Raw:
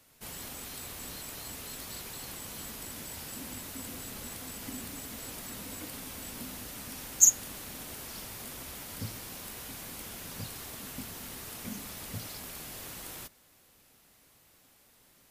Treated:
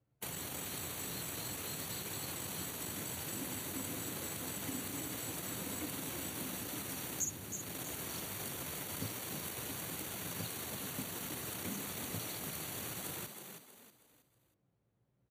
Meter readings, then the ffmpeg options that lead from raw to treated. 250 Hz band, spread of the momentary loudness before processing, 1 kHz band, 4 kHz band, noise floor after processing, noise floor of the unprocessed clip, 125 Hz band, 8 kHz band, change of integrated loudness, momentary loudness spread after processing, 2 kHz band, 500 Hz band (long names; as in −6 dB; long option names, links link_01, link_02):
+1.0 dB, 2 LU, +0.5 dB, −1.0 dB, −77 dBFS, −63 dBFS, +0.5 dB, −9.0 dB, −5.0 dB, 1 LU, +0.5 dB, +2.0 dB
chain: -filter_complex "[0:a]asuperstop=centerf=5100:order=8:qfactor=6.8,acrossover=split=260[link_01][link_02];[link_01]acompressor=threshold=-59dB:ratio=6[link_03];[link_03][link_02]amix=inputs=2:normalize=0,anlmdn=0.1,acrossover=split=250[link_04][link_05];[link_05]acompressor=threshold=-58dB:ratio=4[link_06];[link_04][link_06]amix=inputs=2:normalize=0,highpass=frequency=86:width=0.5412,highpass=frequency=86:width=1.3066,equalizer=frequency=230:width_type=o:width=0.26:gain=-13,asplit=5[link_07][link_08][link_09][link_10][link_11];[link_08]adelay=319,afreqshift=47,volume=-7dB[link_12];[link_09]adelay=638,afreqshift=94,volume=-15.9dB[link_13];[link_10]adelay=957,afreqshift=141,volume=-24.7dB[link_14];[link_11]adelay=1276,afreqshift=188,volume=-33.6dB[link_15];[link_07][link_12][link_13][link_14][link_15]amix=inputs=5:normalize=0,volume=14dB"